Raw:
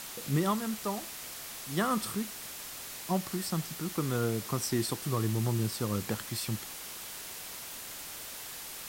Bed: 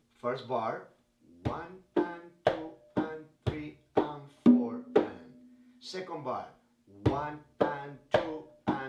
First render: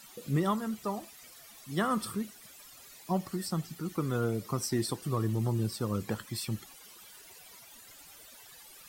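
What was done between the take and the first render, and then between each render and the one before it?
denoiser 15 dB, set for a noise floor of -43 dBFS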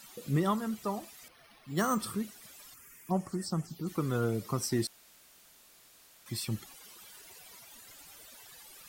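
1.28–2 careless resampling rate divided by 6×, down filtered, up hold; 2.74–3.87 envelope phaser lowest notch 570 Hz, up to 3900 Hz, full sweep at -30 dBFS; 4.87–6.26 room tone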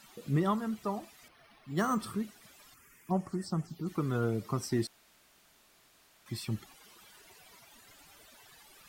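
high shelf 4700 Hz -9 dB; notch 510 Hz, Q 12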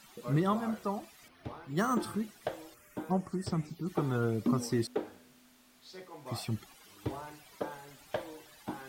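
add bed -9.5 dB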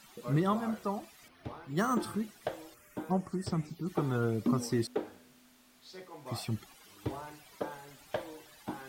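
nothing audible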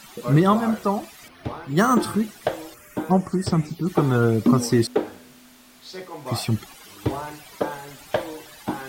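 gain +12 dB

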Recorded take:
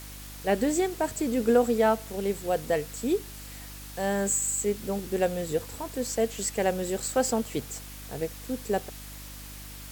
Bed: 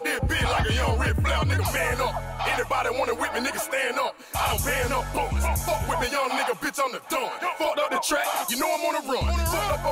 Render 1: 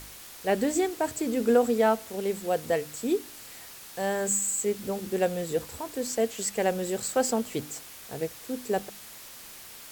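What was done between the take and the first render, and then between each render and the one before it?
de-hum 50 Hz, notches 6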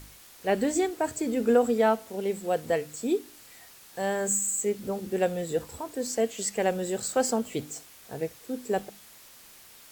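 noise print and reduce 6 dB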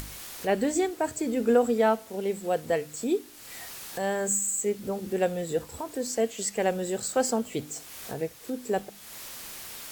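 upward compressor, threshold -30 dBFS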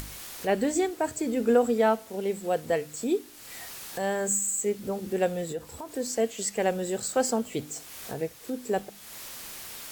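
5.52–5.92 compressor 1.5:1, threshold -41 dBFS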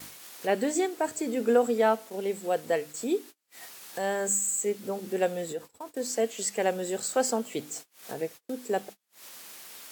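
gate -40 dBFS, range -36 dB; Bessel high-pass 240 Hz, order 2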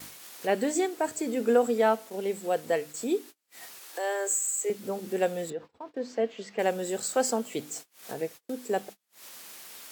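3.79–4.7 Chebyshev high-pass 270 Hz, order 8; 5.5–6.59 air absorption 240 m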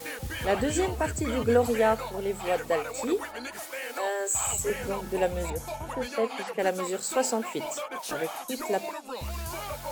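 add bed -11 dB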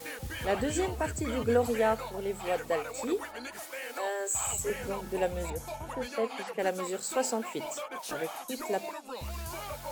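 gain -3.5 dB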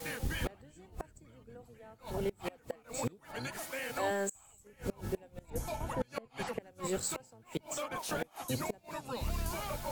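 octaver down 1 oct, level +2 dB; flipped gate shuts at -23 dBFS, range -28 dB

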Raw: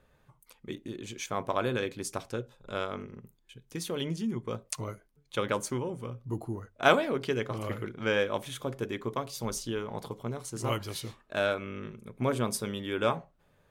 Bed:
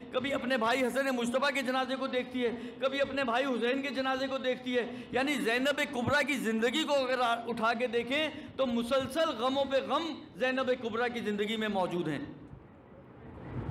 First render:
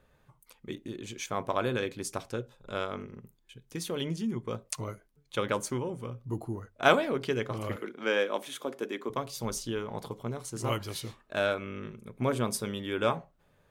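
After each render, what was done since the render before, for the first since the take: 7.76–9.1 HPF 230 Hz 24 dB/oct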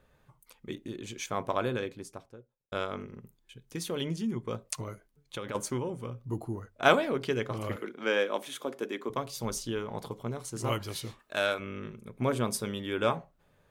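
1.44–2.72 studio fade out; 4.81–5.55 compressor, threshold -33 dBFS; 11.19–11.6 tilt +2 dB/oct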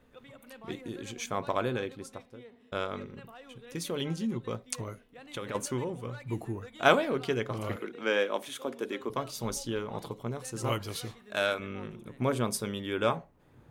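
add bed -20.5 dB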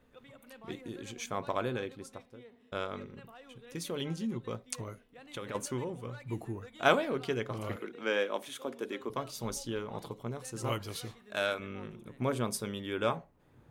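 gain -3 dB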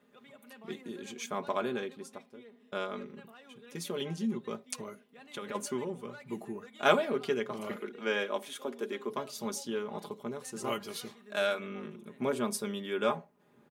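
Chebyshev high-pass 210 Hz, order 2; comb 4.9 ms, depth 61%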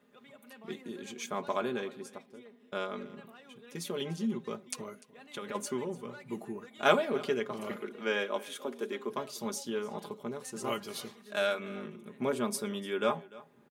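echo 0.296 s -20.5 dB

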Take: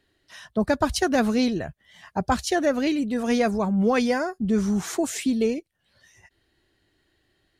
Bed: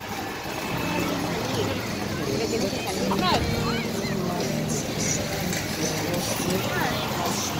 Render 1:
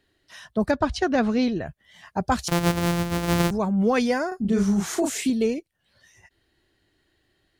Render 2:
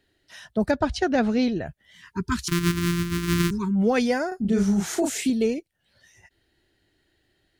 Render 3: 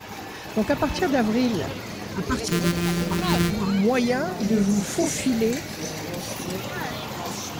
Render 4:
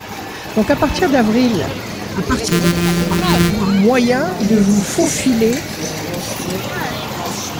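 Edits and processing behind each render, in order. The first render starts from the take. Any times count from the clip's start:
0.71–1.66 air absorption 120 m; 2.48–3.51 sample sorter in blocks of 256 samples; 4.28–5.3 doubler 35 ms -3.5 dB
1.94–3.76 spectral delete 410–920 Hz; bell 1100 Hz -8.5 dB 0.21 oct
add bed -5 dB
gain +8.5 dB; limiter -2 dBFS, peak gain reduction 1.5 dB

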